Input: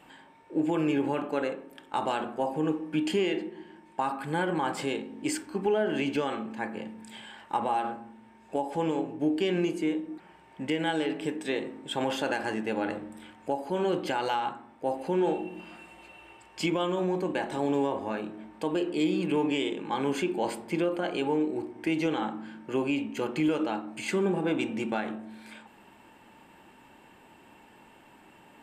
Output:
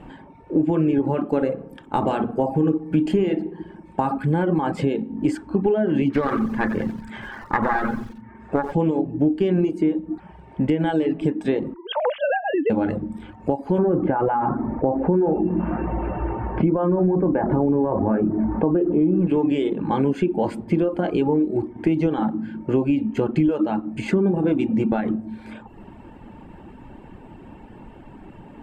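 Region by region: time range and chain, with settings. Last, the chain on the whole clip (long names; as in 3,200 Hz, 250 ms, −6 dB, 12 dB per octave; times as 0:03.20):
0:01.26–0:04.18: high-shelf EQ 7,700 Hz +8.5 dB + feedback echo with a low-pass in the loop 61 ms, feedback 54%, low-pass 2,100 Hz, level −8.5 dB
0:06.10–0:08.73: phase distortion by the signal itself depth 0.17 ms + flat-topped bell 1,500 Hz +9.5 dB 1.2 octaves + feedback echo at a low word length 90 ms, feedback 55%, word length 7 bits, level −7 dB
0:11.74–0:12.70: three sine waves on the formant tracks + high-pass filter 270 Hz 6 dB per octave
0:13.78–0:19.27: low-pass filter 1,700 Hz 24 dB per octave + envelope flattener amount 50%
whole clip: reverb reduction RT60 0.59 s; spectral tilt −4.5 dB per octave; downward compressor 3 to 1, threshold −26 dBFS; level +8 dB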